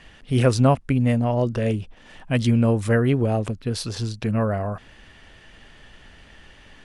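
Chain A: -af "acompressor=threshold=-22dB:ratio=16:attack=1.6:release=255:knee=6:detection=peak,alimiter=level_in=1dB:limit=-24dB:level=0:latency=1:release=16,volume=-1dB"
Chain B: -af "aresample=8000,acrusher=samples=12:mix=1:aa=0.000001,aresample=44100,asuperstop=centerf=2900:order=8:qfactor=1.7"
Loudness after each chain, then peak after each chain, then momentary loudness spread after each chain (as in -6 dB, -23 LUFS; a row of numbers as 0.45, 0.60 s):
-33.5, -22.0 LUFS; -25.0, -5.0 dBFS; 16, 10 LU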